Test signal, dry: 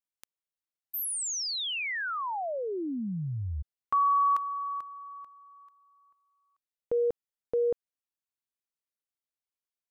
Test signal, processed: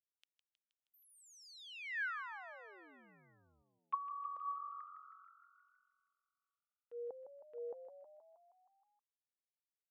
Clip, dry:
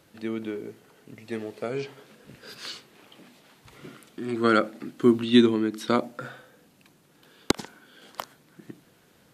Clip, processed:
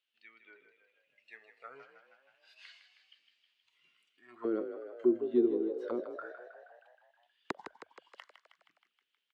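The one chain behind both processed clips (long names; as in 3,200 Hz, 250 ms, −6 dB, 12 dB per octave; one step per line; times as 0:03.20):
noise reduction from a noise print of the clip's start 9 dB
envelope filter 380–3,000 Hz, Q 4.4, down, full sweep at −20 dBFS
echo with shifted repeats 158 ms, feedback 63%, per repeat +44 Hz, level −9.5 dB
level −4.5 dB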